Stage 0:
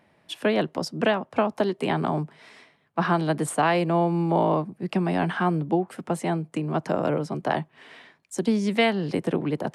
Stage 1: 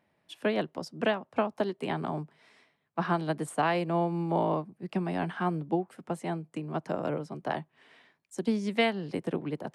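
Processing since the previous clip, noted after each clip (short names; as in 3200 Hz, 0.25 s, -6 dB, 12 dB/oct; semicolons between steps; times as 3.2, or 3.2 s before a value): upward expander 1.5:1, over -31 dBFS; gain -4 dB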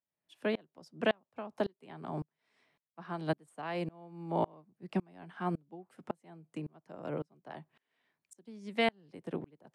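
dB-ramp tremolo swelling 1.8 Hz, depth 32 dB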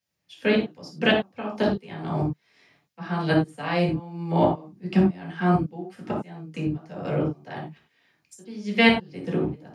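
reverb, pre-delay 3 ms, DRR -2 dB; gain +6 dB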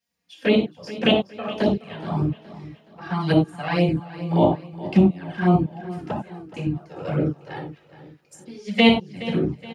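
envelope flanger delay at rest 4.2 ms, full sweep at -18 dBFS; feedback echo 0.421 s, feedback 40%, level -16 dB; gain +4 dB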